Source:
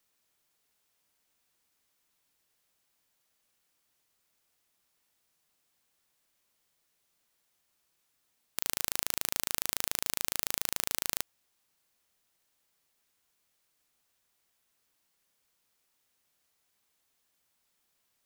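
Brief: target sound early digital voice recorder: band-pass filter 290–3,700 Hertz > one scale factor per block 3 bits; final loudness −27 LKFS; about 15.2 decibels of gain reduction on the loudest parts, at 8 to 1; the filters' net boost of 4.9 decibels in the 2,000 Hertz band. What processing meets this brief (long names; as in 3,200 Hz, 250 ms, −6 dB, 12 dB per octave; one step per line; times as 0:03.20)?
parametric band 2,000 Hz +6.5 dB
downward compressor 8 to 1, threshold −39 dBFS
band-pass filter 290–3,700 Hz
one scale factor per block 3 bits
level +26 dB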